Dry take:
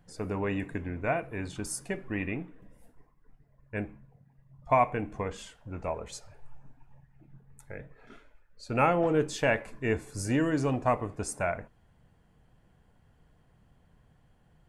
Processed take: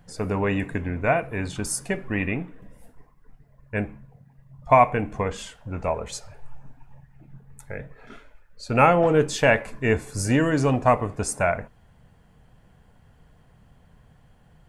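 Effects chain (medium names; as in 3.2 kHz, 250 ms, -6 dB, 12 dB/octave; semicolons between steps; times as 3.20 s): peaking EQ 330 Hz -4.5 dB 0.39 oct; trim +8 dB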